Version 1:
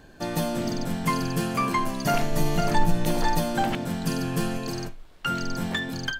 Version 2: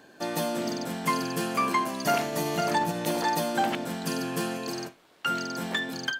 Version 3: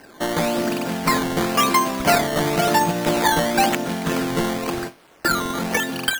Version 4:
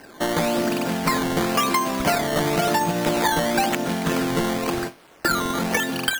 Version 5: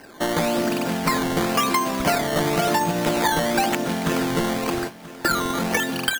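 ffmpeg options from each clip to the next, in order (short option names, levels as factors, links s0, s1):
-af "highpass=250"
-af "acrusher=samples=12:mix=1:aa=0.000001:lfo=1:lforange=12:lforate=0.96,volume=2.51"
-af "acompressor=threshold=0.126:ratio=6,volume=1.12"
-af "aecho=1:1:984|1968|2952:0.126|0.0453|0.0163"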